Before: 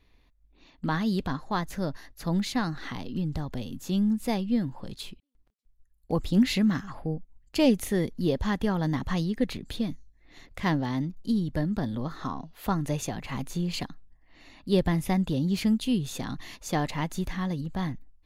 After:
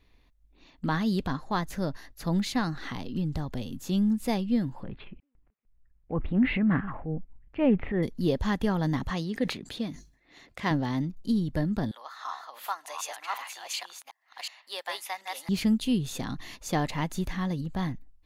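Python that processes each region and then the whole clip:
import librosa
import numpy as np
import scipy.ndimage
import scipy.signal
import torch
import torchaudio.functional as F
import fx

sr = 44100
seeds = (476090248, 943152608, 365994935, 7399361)

y = fx.chain(x, sr, fx.steep_lowpass(hz=2500.0, slope=36),
    fx.transient(attack_db=-6, sustain_db=6), at=(4.83, 8.03))
y = fx.chain(y, sr, fx.highpass(hz=250.0, slope=6),
    fx.high_shelf(hz=11000.0, db=-9.0),
    fx.sustainer(db_per_s=120.0), at=(9.1, 10.71))
y = fx.chain(y, sr, fx.reverse_delay(ms=367, wet_db=-1.5),
    fx.highpass(hz=780.0, slope=24), at=(11.91, 15.49))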